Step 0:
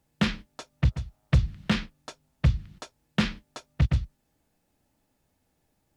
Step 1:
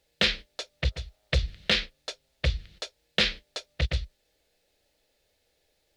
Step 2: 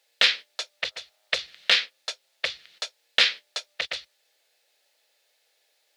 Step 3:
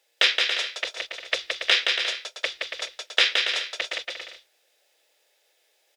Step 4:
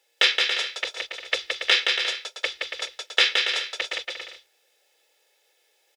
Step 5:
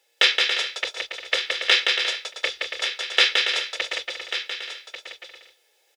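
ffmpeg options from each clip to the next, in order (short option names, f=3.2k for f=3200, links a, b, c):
-af "equalizer=f=125:t=o:w=1:g=-10,equalizer=f=250:t=o:w=1:g=-11,equalizer=f=500:t=o:w=1:g=11,equalizer=f=1k:t=o:w=1:g=-9,equalizer=f=2k:t=o:w=1:g=5,equalizer=f=4k:t=o:w=1:g=11"
-af "highpass=800,volume=5dB"
-af "lowshelf=f=270:t=q:w=3:g=-6.5,bandreject=f=4.3k:w=9.4,aecho=1:1:170|280.5|352.3|399|429.4:0.631|0.398|0.251|0.158|0.1"
-af "aecho=1:1:2.3:0.36"
-af "aecho=1:1:1141:0.299,volume=1.5dB"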